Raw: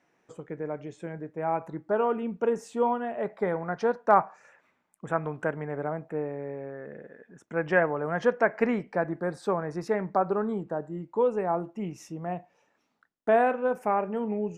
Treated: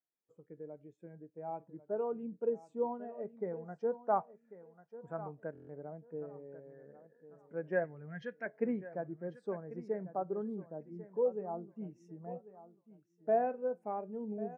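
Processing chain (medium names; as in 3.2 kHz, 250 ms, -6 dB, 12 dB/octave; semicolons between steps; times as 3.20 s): 7.84–8.46 s: graphic EQ 125/250/500/1000/2000/4000 Hz +6/-4/-7/-8/+7/+9 dB; feedback delay 1094 ms, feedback 32%, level -11 dB; dynamic bell 1.2 kHz, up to -5 dB, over -41 dBFS, Q 0.83; buffer glitch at 5.53 s, samples 1024, times 6; spectral contrast expander 1.5:1; trim -8 dB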